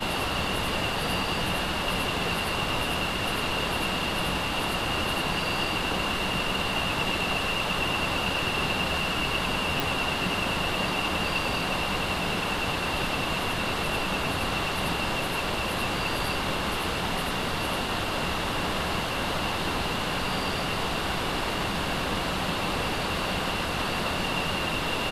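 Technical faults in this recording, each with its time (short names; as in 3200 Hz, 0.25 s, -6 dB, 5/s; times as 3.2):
9.8 pop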